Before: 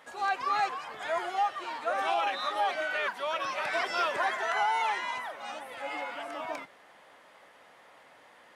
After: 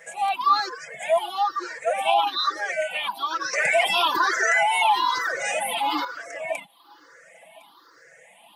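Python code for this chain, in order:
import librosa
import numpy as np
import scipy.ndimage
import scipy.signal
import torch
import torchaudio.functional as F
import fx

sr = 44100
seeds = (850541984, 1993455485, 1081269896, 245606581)

y = fx.spec_ripple(x, sr, per_octave=0.53, drift_hz=1.1, depth_db=19)
y = fx.high_shelf(y, sr, hz=4700.0, db=9.0)
y = y + 0.57 * np.pad(y, (int(6.0 * sr / 1000.0), 0))[:len(y)]
y = y + 10.0 ** (-22.0 / 20.0) * np.pad(y, (int(1059 * sr / 1000.0), 0))[:len(y)]
y = fx.dereverb_blind(y, sr, rt60_s=0.87)
y = fx.low_shelf(y, sr, hz=85.0, db=-11.5)
y = fx.notch(y, sr, hz=1300.0, q=23.0)
y = fx.env_flatten(y, sr, amount_pct=50, at=(3.53, 6.05))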